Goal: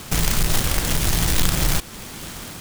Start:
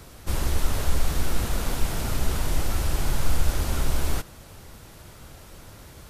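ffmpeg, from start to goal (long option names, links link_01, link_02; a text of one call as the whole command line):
ffmpeg -i in.wav -filter_complex "[0:a]acrossover=split=5100[link_01][link_02];[link_02]acrusher=samples=30:mix=1:aa=0.000001:lfo=1:lforange=18:lforate=3.7[link_03];[link_01][link_03]amix=inputs=2:normalize=0,asetrate=103194,aresample=44100,asplit=2[link_04][link_05];[link_05]alimiter=limit=-20.5dB:level=0:latency=1:release=187,volume=2dB[link_06];[link_04][link_06]amix=inputs=2:normalize=0,acrusher=bits=2:mode=log:mix=0:aa=0.000001,highshelf=frequency=3100:gain=9.5,dynaudnorm=framelen=250:gausssize=5:maxgain=11.5dB,volume=-1dB" out.wav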